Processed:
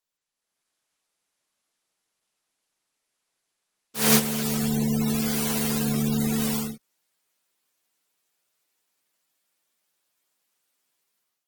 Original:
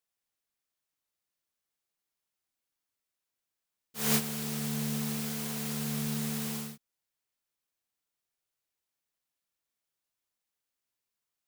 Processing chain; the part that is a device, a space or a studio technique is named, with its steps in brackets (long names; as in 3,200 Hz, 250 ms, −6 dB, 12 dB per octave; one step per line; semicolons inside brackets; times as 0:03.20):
noise-suppressed video call (high-pass filter 170 Hz 12 dB per octave; gate on every frequency bin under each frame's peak −25 dB strong; automatic gain control gain up to 12 dB; Opus 16 kbit/s 48,000 Hz)